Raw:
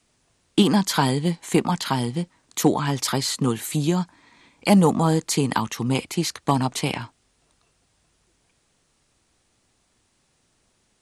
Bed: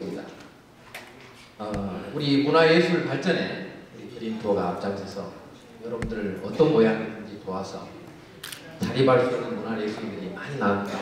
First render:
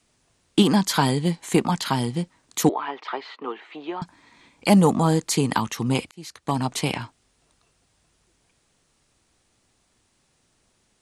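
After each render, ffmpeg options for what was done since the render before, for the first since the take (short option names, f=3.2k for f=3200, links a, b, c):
-filter_complex "[0:a]asettb=1/sr,asplit=3[a][b][c];[a]atrim=end=2.694[d];[b]atrim=start=2.69:end=4.02,asetpts=PTS-STARTPTS,afade=t=in:d=0.004:c=qsin,afade=t=out:st=1.326:d=0.004:c=qsin,highpass=f=410:w=0.5412,highpass=f=410:w=1.3066,equalizer=f=540:t=q:w=4:g=-7,equalizer=f=1.6k:t=q:w=4:g=-4,equalizer=f=2.3k:t=q:w=4:g=-3,lowpass=f=2.6k:w=0.5412,lowpass=f=2.6k:w=1.3066[e];[c]atrim=start=4.016[f];[d][e]acrossfade=d=0.004:c1=hsin:c2=qsin[g];[g][f]acrossfade=d=0.004:c1=qsin:c2=hsin,asplit=2[h][i];[h]atrim=end=6.11,asetpts=PTS-STARTPTS,afade=t=out:st=6.106:d=0.004:c=hsin[j];[i]atrim=start=6.11,asetpts=PTS-STARTPTS,afade=t=in:d=0.66[k];[j][k]concat=n=2:v=0:a=1"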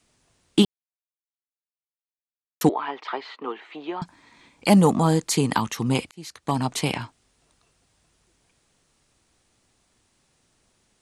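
-filter_complex "[0:a]asplit=3[a][b][c];[a]atrim=end=0.65,asetpts=PTS-STARTPTS,afade=t=out:st=0.646:d=0.004:c=hsin[d];[b]atrim=start=0.65:end=2.61,asetpts=PTS-STARTPTS,volume=0[e];[c]atrim=start=2.61,asetpts=PTS-STARTPTS,afade=t=in:d=0.004:c=hsin[f];[d][e][f]concat=n=3:v=0:a=1"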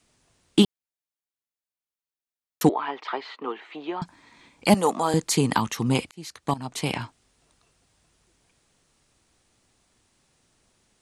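-filter_complex "[0:a]asettb=1/sr,asplit=3[a][b][c];[a]atrim=end=4.744[d];[b]atrim=start=4.74:end=5.14,asetpts=PTS-STARTPTS,afade=t=in:d=0.004:c=qsin,afade=t=out:st=0.396:d=0.004:c=qsin,highpass=450[e];[c]atrim=start=5.136[f];[d][e]acrossfade=d=0.004:c1=hsin:c2=qsin[g];[g][f]acrossfade=d=0.004:c1=qsin:c2=hsin,asplit=2[h][i];[h]atrim=end=6.54,asetpts=PTS-STARTPTS,afade=t=out:st=6.536:d=0.004:c=hsin:silence=0.158489[j];[i]atrim=start=6.54,asetpts=PTS-STARTPTS,afade=t=in:d=0.45:silence=0.158489[k];[j][k]concat=n=2:v=0:a=1"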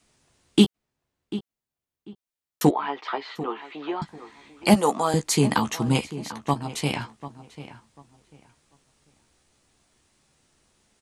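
-filter_complex "[0:a]asplit=2[a][b];[b]adelay=14,volume=-7.5dB[c];[a][c]amix=inputs=2:normalize=0,asplit=2[d][e];[e]adelay=743,lowpass=f=2.4k:p=1,volume=-14dB,asplit=2[f][g];[g]adelay=743,lowpass=f=2.4k:p=1,volume=0.24,asplit=2[h][i];[i]adelay=743,lowpass=f=2.4k:p=1,volume=0.24[j];[d][f][h][j]amix=inputs=4:normalize=0"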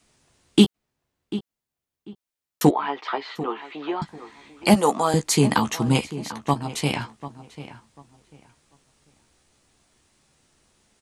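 -af "volume=2dB,alimiter=limit=-3dB:level=0:latency=1"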